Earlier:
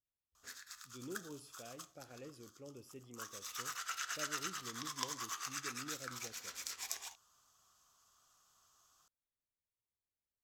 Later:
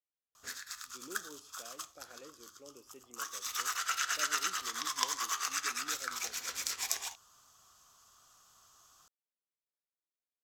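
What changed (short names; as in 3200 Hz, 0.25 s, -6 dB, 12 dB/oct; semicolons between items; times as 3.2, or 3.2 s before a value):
speech: add BPF 310–7100 Hz; background +8.0 dB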